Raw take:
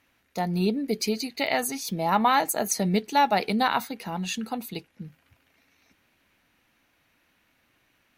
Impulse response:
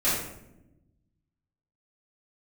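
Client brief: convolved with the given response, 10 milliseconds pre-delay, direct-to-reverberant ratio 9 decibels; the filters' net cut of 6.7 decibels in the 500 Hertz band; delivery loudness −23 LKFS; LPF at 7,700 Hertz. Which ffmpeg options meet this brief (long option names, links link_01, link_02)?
-filter_complex "[0:a]lowpass=7700,equalizer=frequency=500:width_type=o:gain=-9,asplit=2[link_01][link_02];[1:a]atrim=start_sample=2205,adelay=10[link_03];[link_02][link_03]afir=irnorm=-1:irlink=0,volume=-22dB[link_04];[link_01][link_04]amix=inputs=2:normalize=0,volume=4.5dB"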